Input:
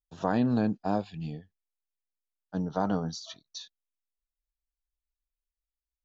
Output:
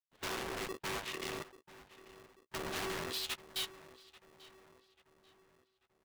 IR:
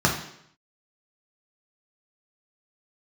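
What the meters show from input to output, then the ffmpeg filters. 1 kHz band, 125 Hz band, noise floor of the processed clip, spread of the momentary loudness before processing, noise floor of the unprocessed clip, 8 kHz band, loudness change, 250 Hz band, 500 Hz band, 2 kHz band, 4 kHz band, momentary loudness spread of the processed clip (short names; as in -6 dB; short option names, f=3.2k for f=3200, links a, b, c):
-9.0 dB, -17.5 dB, -79 dBFS, 18 LU, under -85 dBFS, n/a, -9.0 dB, -18.5 dB, -8.5 dB, +3.0 dB, +5.0 dB, 21 LU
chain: -filter_complex "[0:a]agate=range=-31dB:threshold=-42dB:ratio=16:detection=peak,highpass=f=270:t=q:w=0.5412,highpass=f=270:t=q:w=1.307,lowpass=f=3.5k:t=q:w=0.5176,lowpass=f=3.5k:t=q:w=0.7071,lowpass=f=3.5k:t=q:w=1.932,afreqshift=-200,acompressor=threshold=-39dB:ratio=6,aeval=exprs='0.0562*sin(PI/2*8.91*val(0)/0.0562)':c=same,aeval=exprs='(tanh(126*val(0)+0.8)-tanh(0.8))/126':c=same,tiltshelf=f=660:g=-3.5,aeval=exprs='0.0211*(cos(1*acos(clip(val(0)/0.0211,-1,1)))-cos(1*PI/2))+0.00531*(cos(2*acos(clip(val(0)/0.0211,-1,1)))-cos(2*PI/2))+0.00188*(cos(3*acos(clip(val(0)/0.0211,-1,1)))-cos(3*PI/2))+0.00133*(cos(7*acos(clip(val(0)/0.0211,-1,1)))-cos(7*PI/2))':c=same,asplit=2[a][b];[b]adelay=14,volume=-10.5dB[c];[a][c]amix=inputs=2:normalize=0,asplit=2[d][e];[e]adelay=839,lowpass=f=2.4k:p=1,volume=-16.5dB,asplit=2[f][g];[g]adelay=839,lowpass=f=2.4k:p=1,volume=0.51,asplit=2[h][i];[i]adelay=839,lowpass=f=2.4k:p=1,volume=0.51,asplit=2[j][k];[k]adelay=839,lowpass=f=2.4k:p=1,volume=0.51,asplit=2[l][m];[m]adelay=839,lowpass=f=2.4k:p=1,volume=0.51[n];[d][f][h][j][l][n]amix=inputs=6:normalize=0,aeval=exprs='val(0)*sgn(sin(2*PI*380*n/s))':c=same,volume=6dB"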